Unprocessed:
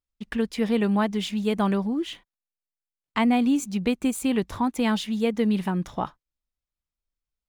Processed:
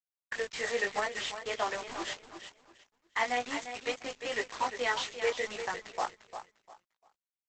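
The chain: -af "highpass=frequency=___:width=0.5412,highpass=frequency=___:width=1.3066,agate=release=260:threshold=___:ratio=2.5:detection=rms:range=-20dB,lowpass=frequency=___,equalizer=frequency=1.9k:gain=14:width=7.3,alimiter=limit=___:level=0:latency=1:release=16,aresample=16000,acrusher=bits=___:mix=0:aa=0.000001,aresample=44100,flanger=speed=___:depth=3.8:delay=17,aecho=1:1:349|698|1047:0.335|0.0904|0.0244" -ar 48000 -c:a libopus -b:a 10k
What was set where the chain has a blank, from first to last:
470, 470, -47dB, 5.2k, -13.5dB, 5, 0.7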